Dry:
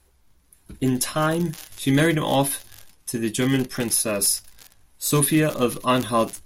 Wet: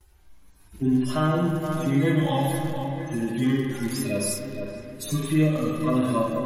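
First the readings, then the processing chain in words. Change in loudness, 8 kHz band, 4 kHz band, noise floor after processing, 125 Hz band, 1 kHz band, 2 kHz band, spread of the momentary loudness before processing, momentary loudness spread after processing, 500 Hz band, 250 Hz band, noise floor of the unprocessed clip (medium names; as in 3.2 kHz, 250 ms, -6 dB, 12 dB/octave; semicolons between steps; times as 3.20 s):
-3.0 dB, -11.0 dB, -8.0 dB, -54 dBFS, +1.0 dB, -4.0 dB, -6.0 dB, 9 LU, 8 LU, -3.0 dB, 0.0 dB, -60 dBFS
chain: harmonic-percussive separation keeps harmonic; gate with hold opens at -58 dBFS; on a send: feedback echo behind a low-pass 466 ms, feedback 34%, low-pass 2.2 kHz, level -11 dB; on the sum: compression 2:1, threshold -35 dBFS, peak gain reduction 11 dB; spring tank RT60 1.6 s, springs 39/51/58 ms, chirp 65 ms, DRR 0 dB; trim +5 dB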